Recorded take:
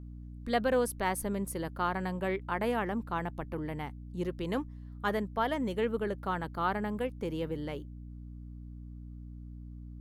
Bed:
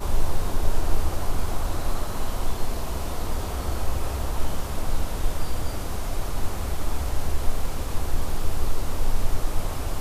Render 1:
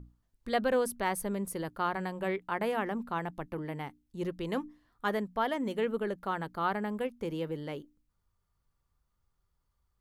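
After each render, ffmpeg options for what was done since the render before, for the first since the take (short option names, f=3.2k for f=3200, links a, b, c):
-af "bandreject=f=60:t=h:w=6,bandreject=f=120:t=h:w=6,bandreject=f=180:t=h:w=6,bandreject=f=240:t=h:w=6,bandreject=f=300:t=h:w=6"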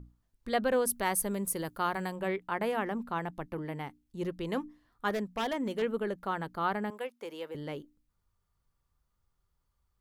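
-filter_complex "[0:a]asettb=1/sr,asplit=3[a][b][c];[a]atrim=end=0.874[d];[b]atrim=start=0.87:end=2.16,asetpts=PTS-STARTPTS,afade=t=in:d=0.004:c=qsin,afade=t=out:st=1.286:d=0.004:c=qsin,highshelf=f=5.6k:g=10.5[e];[c]atrim=start=2.156[f];[d][e]acrossfade=d=0.004:c1=hsin:c2=qsin[g];[g][f]acrossfade=d=0.004:c1=qsin:c2=hsin,asettb=1/sr,asplit=3[h][i][j];[h]atrim=end=5.104[k];[i]atrim=start=5.1:end=5.82,asetpts=PTS-STARTPTS,afade=t=in:d=0.004:c=qsin,afade=t=out:st=0.716:d=0.004:c=qsin,aeval=exprs='0.0531*(abs(mod(val(0)/0.0531+3,4)-2)-1)':c=same[l];[j]atrim=start=5.816[m];[k][l]acrossfade=d=0.004:c1=hsin:c2=qsin[n];[n][m]acrossfade=d=0.004:c1=qsin:c2=hsin,asettb=1/sr,asplit=3[o][p][q];[o]atrim=end=6.904[r];[p]atrim=start=6.9:end=7.55,asetpts=PTS-STARTPTS,afade=t=in:d=0.004:c=qsin,afade=t=out:st=0.646:d=0.004:c=qsin,highpass=530[s];[q]atrim=start=7.546[t];[r][s]acrossfade=d=0.004:c1=hsin:c2=qsin[u];[u][t]acrossfade=d=0.004:c1=qsin:c2=hsin"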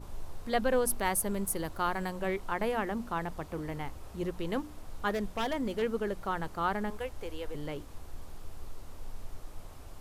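-filter_complex "[1:a]volume=-19.5dB[a];[0:a][a]amix=inputs=2:normalize=0"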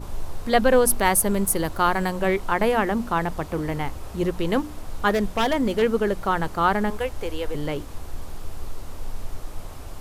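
-af "volume=10.5dB"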